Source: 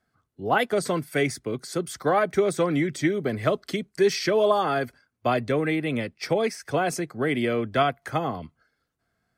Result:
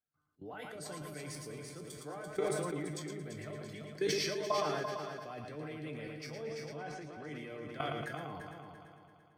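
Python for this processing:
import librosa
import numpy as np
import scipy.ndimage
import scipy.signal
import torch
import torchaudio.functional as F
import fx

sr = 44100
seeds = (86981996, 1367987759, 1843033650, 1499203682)

y = fx.lowpass(x, sr, hz=4000.0, slope=12, at=(6.34, 7.28))
y = fx.level_steps(y, sr, step_db=18)
y = fx.comb_fb(y, sr, f0_hz=150.0, decay_s=0.25, harmonics='all', damping=0.0, mix_pct=80)
y = fx.echo_heads(y, sr, ms=113, heads='first and third', feedback_pct=55, wet_db=-7.5)
y = fx.sustainer(y, sr, db_per_s=23.0)
y = F.gain(torch.from_numpy(y), -1.5).numpy()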